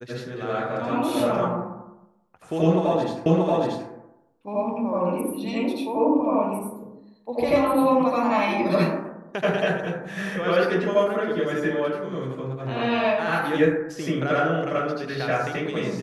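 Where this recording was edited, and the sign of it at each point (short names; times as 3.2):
3.26 repeat of the last 0.63 s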